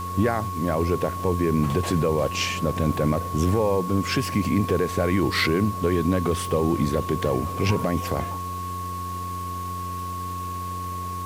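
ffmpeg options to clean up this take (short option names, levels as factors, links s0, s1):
-af "adeclick=t=4,bandreject=f=90.2:t=h:w=4,bandreject=f=180.4:t=h:w=4,bandreject=f=270.6:t=h:w=4,bandreject=f=360.8:t=h:w=4,bandreject=f=451:t=h:w=4,bandreject=f=1100:w=30,afwtdn=0.0056"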